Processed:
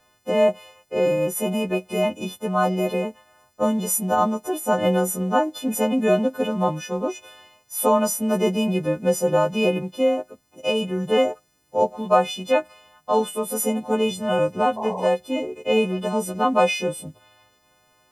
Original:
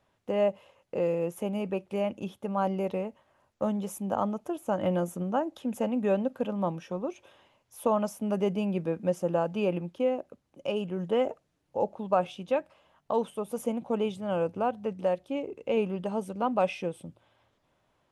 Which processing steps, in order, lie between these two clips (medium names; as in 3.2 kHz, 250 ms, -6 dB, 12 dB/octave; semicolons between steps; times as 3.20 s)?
partials quantised in pitch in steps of 3 st; painted sound noise, 14.76–15.07 s, 400–1100 Hz -37 dBFS; trim +7.5 dB